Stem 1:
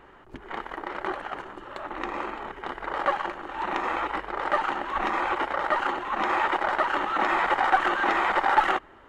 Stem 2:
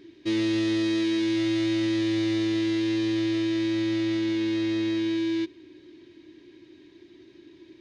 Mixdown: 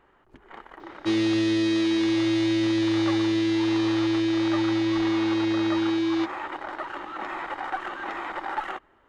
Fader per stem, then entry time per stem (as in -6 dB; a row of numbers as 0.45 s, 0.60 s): -9.5 dB, +2.0 dB; 0.00 s, 0.80 s